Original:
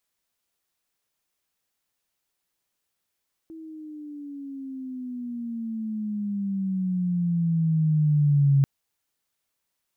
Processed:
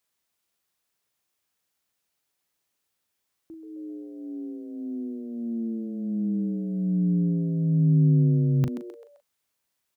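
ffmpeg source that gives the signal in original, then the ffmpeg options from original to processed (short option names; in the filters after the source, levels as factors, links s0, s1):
-f lavfi -i "aevalsrc='pow(10,(-15+23*(t/5.14-1))/20)*sin(2*PI*326*5.14/(-15*log(2)/12)*(exp(-15*log(2)/12*t/5.14)-1))':d=5.14:s=44100"
-filter_complex "[0:a]highpass=44,asplit=2[s0][s1];[s1]adelay=39,volume=0.355[s2];[s0][s2]amix=inputs=2:normalize=0,asplit=2[s3][s4];[s4]asplit=4[s5][s6][s7][s8];[s5]adelay=130,afreqshift=110,volume=0.282[s9];[s6]adelay=260,afreqshift=220,volume=0.116[s10];[s7]adelay=390,afreqshift=330,volume=0.0473[s11];[s8]adelay=520,afreqshift=440,volume=0.0195[s12];[s9][s10][s11][s12]amix=inputs=4:normalize=0[s13];[s3][s13]amix=inputs=2:normalize=0"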